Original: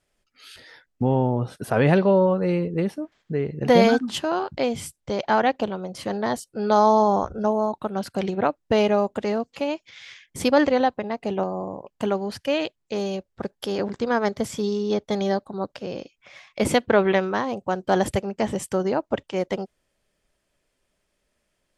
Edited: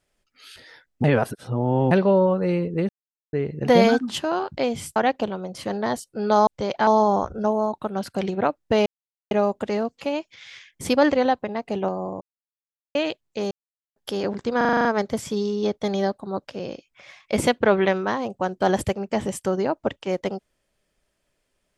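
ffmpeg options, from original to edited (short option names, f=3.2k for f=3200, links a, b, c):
-filter_complex "[0:a]asplit=20[a][b][c][d][e][f][g][h][i][j][k][l][m][n][o][p][q][r][s][t];[a]atrim=end=1.042[u];[b]atrim=start=1.038:end=1.912,asetpts=PTS-STARTPTS,areverse[v];[c]atrim=start=1.908:end=2.89,asetpts=PTS-STARTPTS,afade=t=out:st=0.978:d=0.004:c=hsin[w];[d]atrim=start=2.89:end=3.33,asetpts=PTS-STARTPTS,volume=0[x];[e]atrim=start=3.33:end=4.962,asetpts=PTS-STARTPTS,afade=t=in:d=0.004:c=hsin[y];[f]atrim=start=5.358:end=6.872[z];[g]atrim=start=4.958:end=5.362[aa];[h]atrim=start=6.868:end=8.86,asetpts=PTS-STARTPTS,afade=t=out:st=1.988:d=0.004:c=hsin,apad=pad_dur=0.45[ab];[i]atrim=start=8.86:end=11.76,asetpts=PTS-STARTPTS,afade=t=in:d=0.004:c=hsin,afade=t=out:st=2.896:d=0.004:c=hsin[ac];[j]atrim=start=11.76:end=12.5,asetpts=PTS-STARTPTS,volume=0[ad];[k]atrim=start=12.5:end=13.06,asetpts=PTS-STARTPTS,afade=t=in:d=0.004:c=hsin,afade=t=out:st=0.556:d=0.004:c=hsin[ae];[l]atrim=start=13.06:end=13.51,asetpts=PTS-STARTPTS,volume=0[af];[m]atrim=start=13.51:end=14.162,asetpts=PTS-STARTPTS,afade=t=in:d=0.004:c=hsin[ag];[n]atrim=start=14.118:end=14.162[ah];[o]atrim=start=14.118:end=14.162[ai];[p]atrim=start=14.118:end=14.162[aj];[q]atrim=start=14.118:end=14.162[ak];[r]atrim=start=14.118:end=14.162[al];[s]atrim=start=14.118:end=14.162[am];[t]atrim=start=14.118[an];[u][v]acrossfade=d=0.004:c1=hsin:c2=hsin[ao];[w][x][y]concat=n=3:v=0:a=1[ap];[ao][ap]acrossfade=d=0.004:c1=hsin:c2=hsin[aq];[aq][z]acrossfade=d=0.004:c1=hsin:c2=hsin[ar];[ar][aa]acrossfade=d=0.004:c1=hsin:c2=hsin[as];[ab][ac][ad][ae][af][ag]concat=n=6:v=0:a=1[at];[as][at]acrossfade=d=0.004:c1=hsin:c2=hsin[au];[au][ah]acrossfade=d=0.004:c1=hsin:c2=hsin[av];[av][ai]acrossfade=d=0.004:c1=hsin:c2=hsin[aw];[aw][aj]acrossfade=d=0.004:c1=hsin:c2=hsin[ax];[ax][ak]acrossfade=d=0.004:c1=hsin:c2=hsin[ay];[ay][al]acrossfade=d=0.004:c1=hsin:c2=hsin[az];[az][am]acrossfade=d=0.004:c1=hsin:c2=hsin[ba];[ba][an]acrossfade=d=0.004:c1=hsin:c2=hsin"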